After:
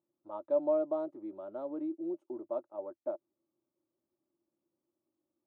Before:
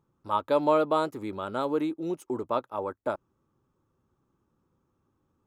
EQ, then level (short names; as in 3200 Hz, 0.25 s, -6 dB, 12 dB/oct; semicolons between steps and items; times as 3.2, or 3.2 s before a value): double band-pass 450 Hz, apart 0.79 oct; -3.0 dB